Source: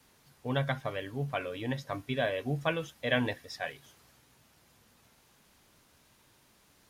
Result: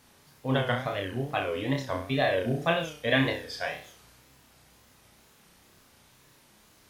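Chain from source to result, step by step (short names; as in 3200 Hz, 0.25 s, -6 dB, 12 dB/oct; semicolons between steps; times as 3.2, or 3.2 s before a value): flutter echo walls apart 5.4 m, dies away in 0.46 s; wow and flutter 130 cents; gain +3 dB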